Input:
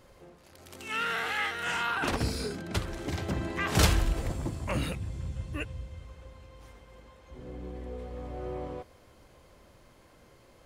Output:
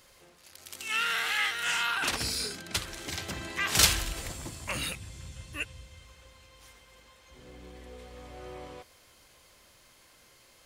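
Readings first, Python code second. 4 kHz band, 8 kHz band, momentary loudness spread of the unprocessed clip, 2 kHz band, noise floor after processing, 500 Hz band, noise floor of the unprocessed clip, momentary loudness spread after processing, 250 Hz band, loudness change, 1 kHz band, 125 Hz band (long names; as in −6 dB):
+6.5 dB, +8.5 dB, 17 LU, +2.5 dB, −60 dBFS, −6.5 dB, −58 dBFS, 23 LU, −8.5 dB, +2.5 dB, −1.5 dB, −9.0 dB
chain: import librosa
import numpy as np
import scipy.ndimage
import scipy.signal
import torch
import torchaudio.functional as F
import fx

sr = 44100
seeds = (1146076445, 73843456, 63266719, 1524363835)

y = fx.tilt_shelf(x, sr, db=-9.0, hz=1400.0)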